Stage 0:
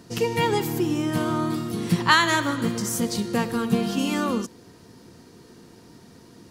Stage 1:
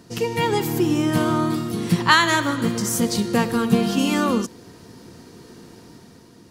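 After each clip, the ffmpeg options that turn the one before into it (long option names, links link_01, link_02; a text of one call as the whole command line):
ffmpeg -i in.wav -af "dynaudnorm=framelen=100:gausssize=13:maxgain=5dB" out.wav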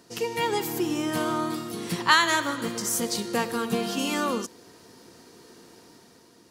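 ffmpeg -i in.wav -af "bass=frequency=250:gain=-11,treble=frequency=4000:gain=2,volume=-4dB" out.wav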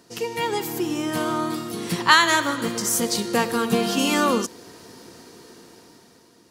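ffmpeg -i in.wav -af "dynaudnorm=framelen=330:gausssize=9:maxgain=6.5dB,volume=1dB" out.wav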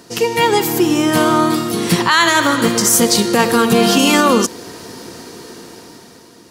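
ffmpeg -i in.wav -af "alimiter=level_in=12.5dB:limit=-1dB:release=50:level=0:latency=1,volume=-1dB" out.wav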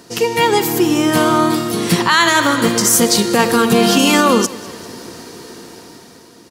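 ffmpeg -i in.wav -af "aecho=1:1:198|396|594|792:0.0891|0.049|0.027|0.0148" out.wav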